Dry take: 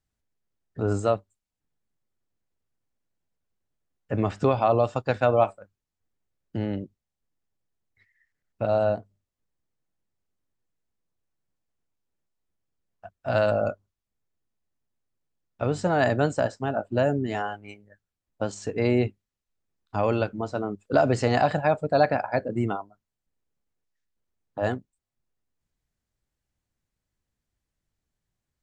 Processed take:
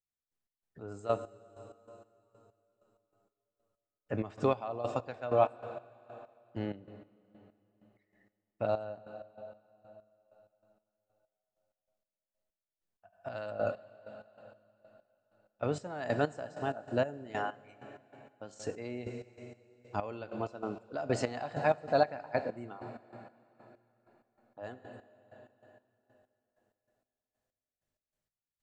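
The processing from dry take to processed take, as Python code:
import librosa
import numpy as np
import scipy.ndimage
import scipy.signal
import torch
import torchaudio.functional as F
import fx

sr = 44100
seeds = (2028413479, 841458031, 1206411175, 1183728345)

y = fx.low_shelf(x, sr, hz=160.0, db=-7.5)
y = fx.rev_plate(y, sr, seeds[0], rt60_s=3.9, hf_ratio=0.95, predelay_ms=0, drr_db=11.0)
y = fx.step_gate(y, sr, bpm=96, pattern='..x.x..x', floor_db=-12.0, edge_ms=4.5)
y = y * 10.0 ** (-5.0 / 20.0)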